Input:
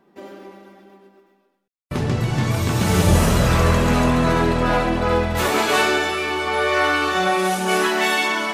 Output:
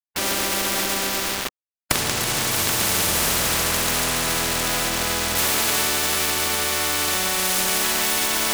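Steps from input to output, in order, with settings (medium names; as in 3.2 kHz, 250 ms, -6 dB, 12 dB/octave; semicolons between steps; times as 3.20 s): recorder AGC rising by 75 dB/s; small samples zeroed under -29.5 dBFS; spectrum-flattening compressor 4:1; trim -3 dB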